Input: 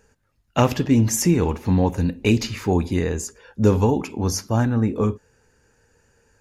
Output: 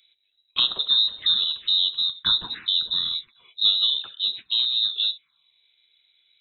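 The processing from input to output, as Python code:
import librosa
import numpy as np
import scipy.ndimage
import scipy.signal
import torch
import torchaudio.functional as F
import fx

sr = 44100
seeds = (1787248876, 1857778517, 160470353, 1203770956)

y = fx.freq_invert(x, sr, carrier_hz=3900)
y = fx.env_phaser(y, sr, low_hz=190.0, high_hz=2200.0, full_db=-18.0)
y = F.gain(torch.from_numpy(y), -2.0).numpy()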